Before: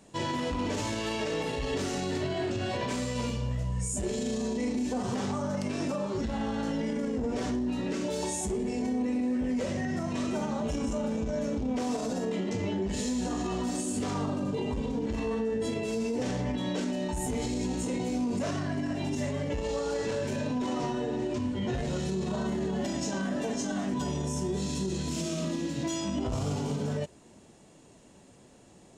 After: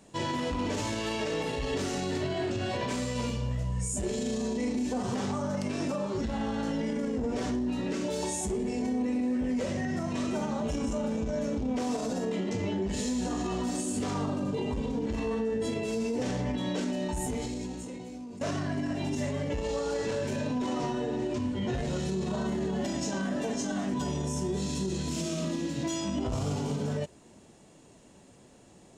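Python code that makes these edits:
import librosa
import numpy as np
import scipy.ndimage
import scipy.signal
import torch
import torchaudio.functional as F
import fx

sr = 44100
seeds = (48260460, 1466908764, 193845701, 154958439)

y = fx.edit(x, sr, fx.fade_out_to(start_s=17.21, length_s=1.2, curve='qua', floor_db=-13.0), tone=tone)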